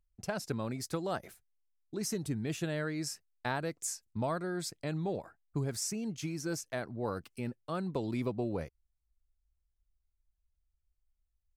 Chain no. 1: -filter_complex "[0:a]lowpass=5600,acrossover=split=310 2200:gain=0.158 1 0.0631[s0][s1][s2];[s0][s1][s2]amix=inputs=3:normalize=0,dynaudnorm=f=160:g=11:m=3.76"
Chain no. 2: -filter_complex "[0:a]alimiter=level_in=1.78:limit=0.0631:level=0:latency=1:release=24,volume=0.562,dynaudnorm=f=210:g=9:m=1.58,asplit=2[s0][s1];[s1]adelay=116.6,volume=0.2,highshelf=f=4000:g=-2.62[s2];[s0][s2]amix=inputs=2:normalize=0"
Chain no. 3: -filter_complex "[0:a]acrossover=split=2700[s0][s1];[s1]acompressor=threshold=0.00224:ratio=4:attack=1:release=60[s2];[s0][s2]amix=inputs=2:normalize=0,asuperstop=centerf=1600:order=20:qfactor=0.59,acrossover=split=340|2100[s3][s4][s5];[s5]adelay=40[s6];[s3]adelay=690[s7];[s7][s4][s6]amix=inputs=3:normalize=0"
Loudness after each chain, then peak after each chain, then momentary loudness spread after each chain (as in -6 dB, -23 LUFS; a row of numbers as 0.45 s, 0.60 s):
-30.5 LUFS, -35.0 LUFS, -40.0 LUFS; -10.5 dBFS, -23.5 dBFS, -25.0 dBFS; 12 LU, 7 LU, 7 LU